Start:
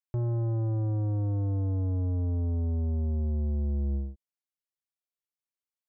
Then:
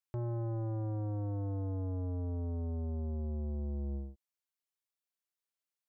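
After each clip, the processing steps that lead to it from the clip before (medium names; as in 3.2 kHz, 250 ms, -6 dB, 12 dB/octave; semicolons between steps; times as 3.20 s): bass shelf 340 Hz -9 dB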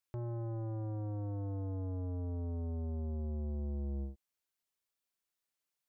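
peak limiter -37 dBFS, peak gain reduction 6.5 dB; trim +3 dB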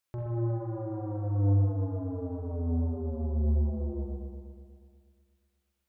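spring tank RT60 2.1 s, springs 40/60 ms, chirp 20 ms, DRR -2 dB; trim +3.5 dB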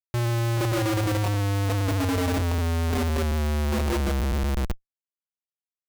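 Schmitt trigger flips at -45.5 dBFS; trim +7 dB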